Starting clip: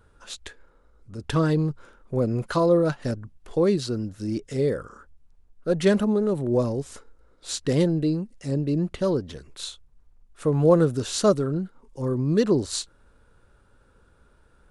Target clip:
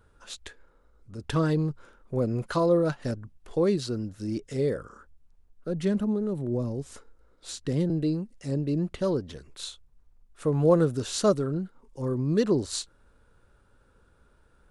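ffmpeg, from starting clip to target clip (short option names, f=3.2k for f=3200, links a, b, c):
-filter_complex "[0:a]asettb=1/sr,asplit=3[a][b][c];[a]atrim=end=4.764[d];[b]atrim=start=4.76:end=7.9,asetpts=PTS-STARTPTS,afade=t=in:d=0.004:c=qsin,afade=t=out:st=3.136:d=0.004:c=qsin,acrossover=split=320[e][f];[f]acompressor=threshold=-35dB:ratio=2.5[g];[e][g]amix=inputs=2:normalize=0[h];[c]atrim=start=7.896[i];[d][h]acrossfade=d=0.004:c1=hsin:c2=qsin[j];[j][i]acrossfade=d=0.004:c1=qsin:c2=hsin,volume=-3dB"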